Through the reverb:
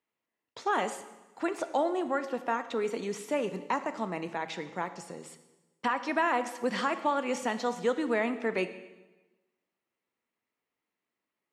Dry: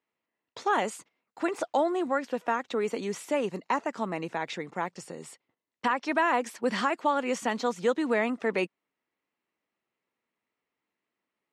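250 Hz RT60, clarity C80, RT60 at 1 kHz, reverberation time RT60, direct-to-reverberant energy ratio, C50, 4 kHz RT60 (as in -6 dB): 1.2 s, 13.5 dB, 1.1 s, 1.1 s, 10.5 dB, 12.0 dB, 1.0 s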